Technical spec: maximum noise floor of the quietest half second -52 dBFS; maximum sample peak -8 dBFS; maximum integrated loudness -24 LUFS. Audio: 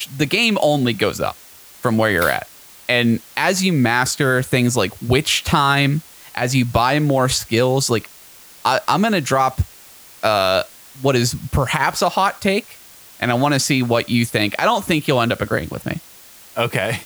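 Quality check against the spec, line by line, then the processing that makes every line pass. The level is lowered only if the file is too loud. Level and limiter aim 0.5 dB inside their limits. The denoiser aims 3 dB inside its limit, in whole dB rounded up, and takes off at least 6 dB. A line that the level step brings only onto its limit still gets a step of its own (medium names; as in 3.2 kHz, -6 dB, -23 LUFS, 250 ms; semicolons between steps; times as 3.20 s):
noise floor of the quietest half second -43 dBFS: fail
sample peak -2.5 dBFS: fail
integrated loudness -18.0 LUFS: fail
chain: noise reduction 6 dB, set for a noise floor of -43 dBFS; trim -6.5 dB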